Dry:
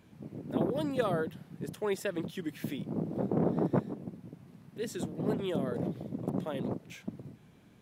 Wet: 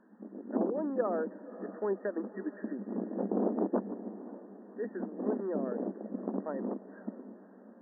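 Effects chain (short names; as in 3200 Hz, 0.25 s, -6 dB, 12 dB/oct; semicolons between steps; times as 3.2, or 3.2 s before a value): FFT band-pass 190–1900 Hz; treble ducked by the level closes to 1200 Hz, closed at -29.5 dBFS; diffused feedback echo 0.559 s, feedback 52%, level -15.5 dB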